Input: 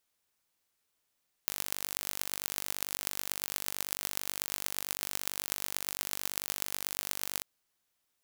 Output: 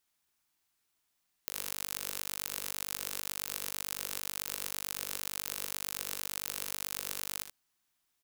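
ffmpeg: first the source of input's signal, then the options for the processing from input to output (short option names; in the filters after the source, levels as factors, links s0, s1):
-f lavfi -i "aevalsrc='0.668*eq(mod(n,900),0)*(0.5+0.5*eq(mod(n,5400),0))':d=5.94:s=44100"
-filter_complex "[0:a]equalizer=f=510:t=o:w=0.27:g=-13,alimiter=limit=0.398:level=0:latency=1:release=80,asplit=2[s0][s1];[s1]aecho=0:1:62|77:0.188|0.355[s2];[s0][s2]amix=inputs=2:normalize=0"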